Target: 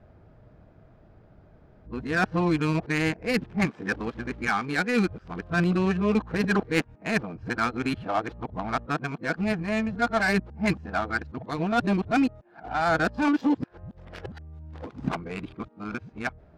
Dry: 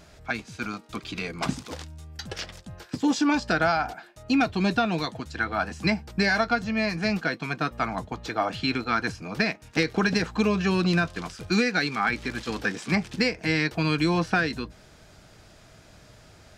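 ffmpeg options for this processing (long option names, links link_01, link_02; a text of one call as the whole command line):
ffmpeg -i in.wav -af "areverse,adynamicsmooth=sensitivity=1.5:basefreq=960" out.wav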